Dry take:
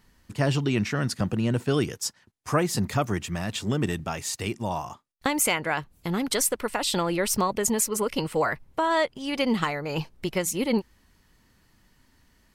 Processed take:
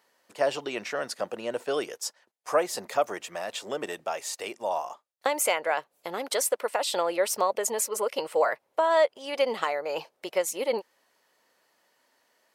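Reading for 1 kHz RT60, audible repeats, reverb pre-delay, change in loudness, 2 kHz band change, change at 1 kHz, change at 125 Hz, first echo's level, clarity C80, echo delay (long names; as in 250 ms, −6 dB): no reverb audible, no echo audible, no reverb audible, −2.0 dB, −2.5 dB, 0.0 dB, below −25 dB, no echo audible, no reverb audible, no echo audible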